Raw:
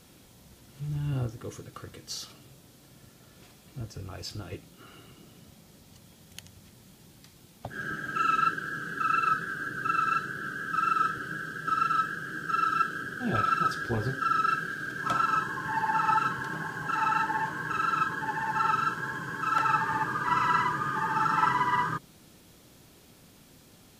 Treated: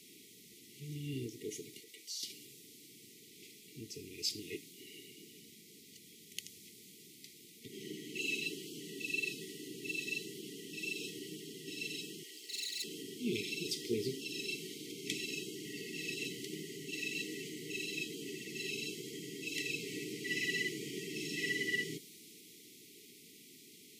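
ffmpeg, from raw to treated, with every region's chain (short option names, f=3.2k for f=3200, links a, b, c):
-filter_complex "[0:a]asettb=1/sr,asplit=3[a][b][c];[a]atrim=end=1.804[d];[b]atrim=start=1.8:end=2.23,asetpts=PTS-STARTPTS,afade=t=in:d=0.004:c=qsin,afade=t=out:st=0.426:d=0.004:c=qsin,highpass=f=1.1k:p=1,acompressor=threshold=-50dB:ratio=2:attack=3.2:release=140:knee=1:detection=peak[e];[c]atrim=start=2.226[f];[d][e]acrossfade=d=0.004:c1=hsin:c2=qsin[g];[g][f]acrossfade=d=0.004:c1=qsin:c2=hsin,asettb=1/sr,asplit=3[h][i][j];[h]atrim=end=12.234[k];[i]atrim=start=12.23:end=12.84,asetpts=PTS-STARTPTS,afade=t=in:d=0.004:c=qsin,afade=t=out:st=0.606:d=0.004:c=qsin,highpass=740,asoftclip=type=hard:threshold=-31.5dB[l];[j]atrim=start=12.836[m];[k][l]acrossfade=d=0.004:c1=hsin:c2=qsin[n];[n][m]acrossfade=d=0.004:c1=qsin:c2=hsin,afftfilt=real='re*(1-between(b*sr/4096,470,1900))':imag='im*(1-between(b*sr/4096,470,1900))':win_size=4096:overlap=0.75,highpass=320,adynamicequalizer=threshold=0.00316:dfrequency=3700:dqfactor=0.7:tfrequency=3700:tqfactor=0.7:attack=5:release=100:ratio=0.375:range=2:mode=boostabove:tftype=highshelf,volume=1.5dB"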